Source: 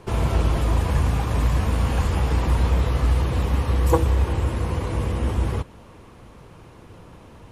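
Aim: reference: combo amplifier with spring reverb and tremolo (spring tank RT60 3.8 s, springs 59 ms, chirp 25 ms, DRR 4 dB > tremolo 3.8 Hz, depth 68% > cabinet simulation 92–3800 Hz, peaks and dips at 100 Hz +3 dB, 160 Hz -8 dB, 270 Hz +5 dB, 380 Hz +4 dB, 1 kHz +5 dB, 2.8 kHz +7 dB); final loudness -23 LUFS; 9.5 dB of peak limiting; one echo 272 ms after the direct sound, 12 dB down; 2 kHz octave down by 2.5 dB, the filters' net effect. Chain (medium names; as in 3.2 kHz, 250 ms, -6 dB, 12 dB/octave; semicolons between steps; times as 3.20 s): peaking EQ 2 kHz -6 dB; peak limiter -14.5 dBFS; delay 272 ms -12 dB; spring tank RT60 3.8 s, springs 59 ms, chirp 25 ms, DRR 4 dB; tremolo 3.8 Hz, depth 68%; cabinet simulation 92–3800 Hz, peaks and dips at 100 Hz +3 dB, 160 Hz -8 dB, 270 Hz +5 dB, 380 Hz +4 dB, 1 kHz +5 dB, 2.8 kHz +7 dB; trim +5.5 dB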